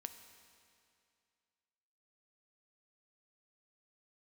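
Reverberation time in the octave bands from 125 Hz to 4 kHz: 2.4, 2.4, 2.4, 2.4, 2.3, 2.3 s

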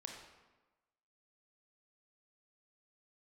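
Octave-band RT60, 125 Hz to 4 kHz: 1.1, 1.2, 1.2, 1.2, 1.0, 0.80 s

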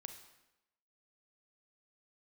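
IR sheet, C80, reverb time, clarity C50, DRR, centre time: 10.5 dB, 0.95 s, 8.0 dB, 6.5 dB, 18 ms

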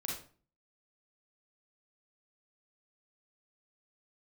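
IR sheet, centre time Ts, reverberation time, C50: 42 ms, 0.40 s, 2.0 dB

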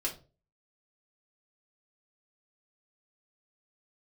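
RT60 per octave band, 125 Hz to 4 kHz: 0.45, 0.40, 0.40, 0.30, 0.25, 0.25 s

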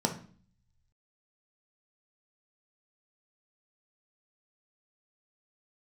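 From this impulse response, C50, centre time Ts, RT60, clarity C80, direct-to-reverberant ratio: 10.5 dB, 13 ms, 0.45 s, 16.0 dB, 3.0 dB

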